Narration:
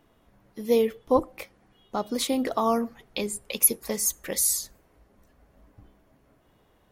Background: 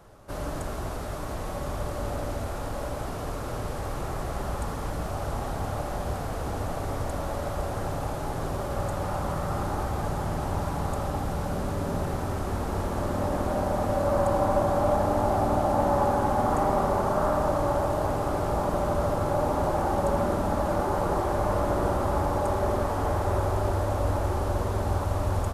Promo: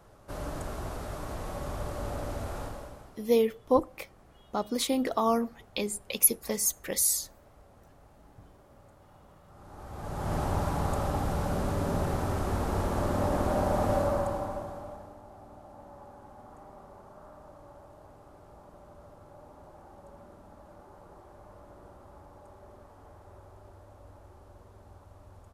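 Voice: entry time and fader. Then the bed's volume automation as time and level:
2.60 s, -2.0 dB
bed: 2.62 s -4 dB
3.34 s -27.5 dB
9.45 s -27.5 dB
10.34 s -0.5 dB
13.96 s -0.5 dB
15.21 s -26 dB

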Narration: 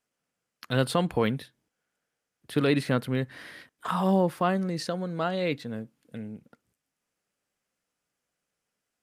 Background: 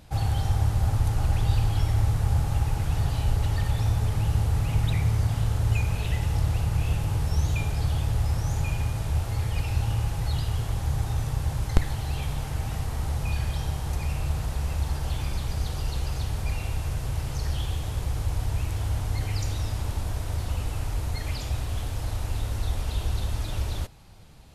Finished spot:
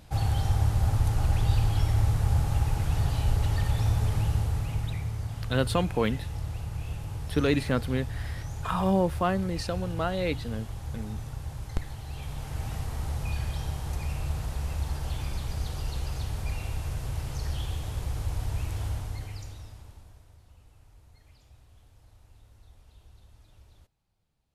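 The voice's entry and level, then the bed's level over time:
4.80 s, -1.0 dB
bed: 4.17 s -1 dB
5.13 s -9.5 dB
12.05 s -9.5 dB
12.64 s -3.5 dB
18.86 s -3.5 dB
20.40 s -27 dB

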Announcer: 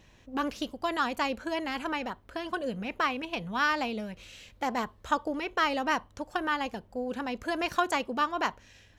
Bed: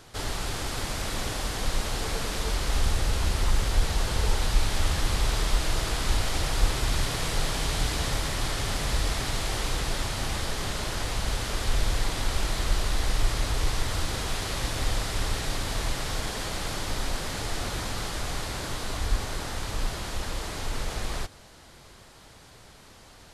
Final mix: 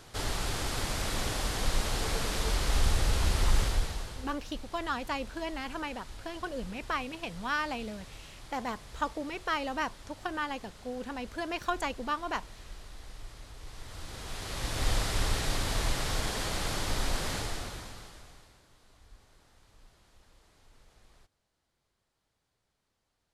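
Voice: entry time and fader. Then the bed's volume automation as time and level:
3.90 s, -4.5 dB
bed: 3.62 s -1.5 dB
4.39 s -21 dB
13.59 s -21 dB
14.90 s -1 dB
17.34 s -1 dB
18.66 s -29.5 dB

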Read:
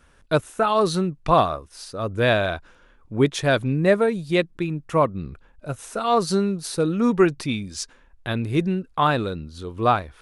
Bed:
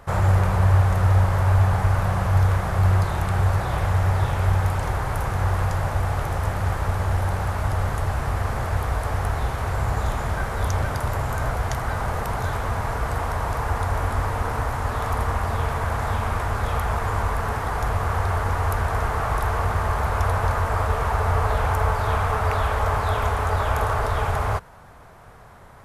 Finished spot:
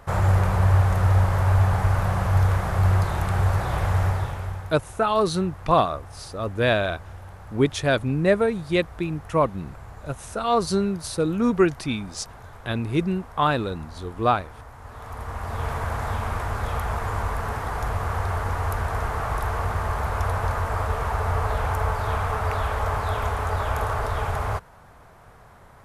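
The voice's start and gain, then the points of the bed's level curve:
4.40 s, -1.5 dB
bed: 4.04 s -1 dB
4.82 s -18 dB
14.75 s -18 dB
15.69 s -3 dB

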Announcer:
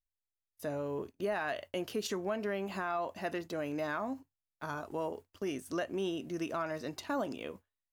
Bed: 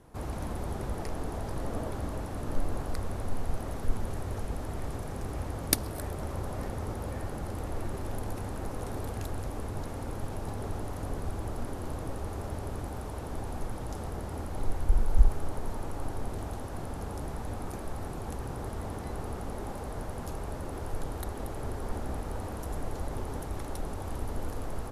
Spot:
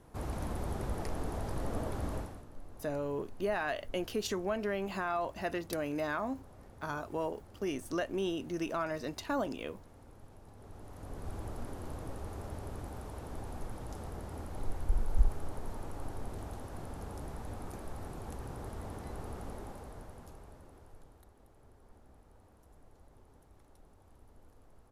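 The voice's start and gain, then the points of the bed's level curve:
2.20 s, +1.0 dB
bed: 2.18 s -2 dB
2.49 s -19 dB
10.51 s -19 dB
11.34 s -6 dB
19.49 s -6 dB
21.34 s -25 dB

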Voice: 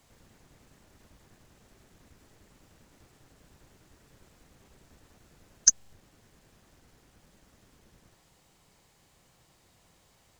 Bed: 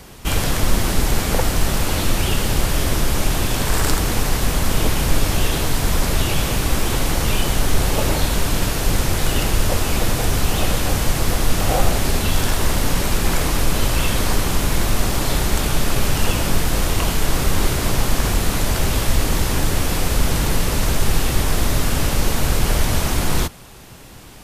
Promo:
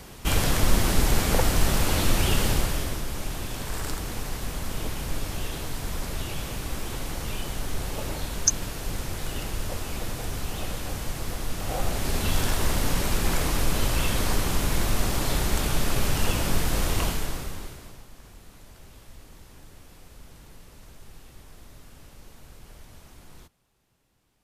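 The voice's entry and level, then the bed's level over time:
2.80 s, -2.0 dB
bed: 2.47 s -3.5 dB
3.03 s -13 dB
11.59 s -13 dB
12.30 s -6 dB
17.04 s -6 dB
18.07 s -30 dB

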